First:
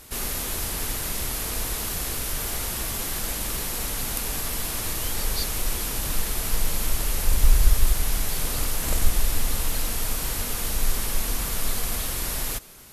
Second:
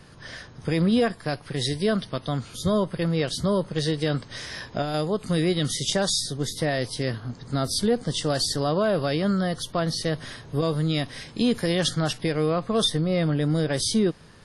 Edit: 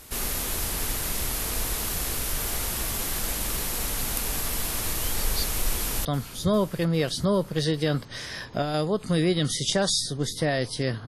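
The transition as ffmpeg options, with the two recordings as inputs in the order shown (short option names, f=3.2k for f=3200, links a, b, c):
-filter_complex "[0:a]apad=whole_dur=11.07,atrim=end=11.07,atrim=end=6.052[a];[1:a]atrim=start=2.248:end=7.27[b];[a][b]acrossfade=d=0.004:c1=hsin:c2=hsin,asplit=2[c][d];[d]afade=t=in:st=5.73:d=0.01,afade=t=out:st=6.05:d=0.01,aecho=0:1:400|800|1200|1600|2000|2400|2800|3200|3600:0.177828|0.12448|0.0871357|0.060995|0.0426965|0.0298875|0.0209213|0.0146449|0.0102514[e];[c][e]amix=inputs=2:normalize=0"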